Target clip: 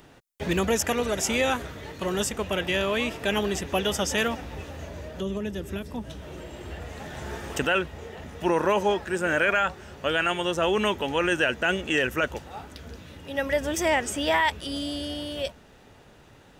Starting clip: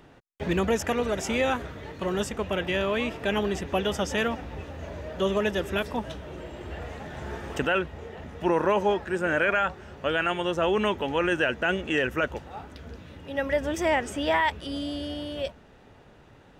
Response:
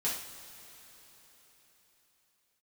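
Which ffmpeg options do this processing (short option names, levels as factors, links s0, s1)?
-filter_complex "[0:a]highshelf=f=4300:g=11.5,asettb=1/sr,asplit=3[s0][s1][s2];[s0]atrim=end=4.814[s3];[s1]atrim=start=4.81:end=6.97,asetpts=PTS-STARTPTS,afade=t=in:d=0.004:c=qsin,afade=t=out:st=2.156:d=0.004:c=qsin,acrossover=split=340[s4][s5];[s5]acompressor=threshold=0.01:ratio=4[s6];[s4][s6]amix=inputs=2:normalize=0[s7];[s2]atrim=start=6.966[s8];[s3][s7]acrossfade=d=0.004:c1=hsin:c2=qsin[s9];[s9][s8]acrossfade=d=0.004:c1=qsin:c2=hsin"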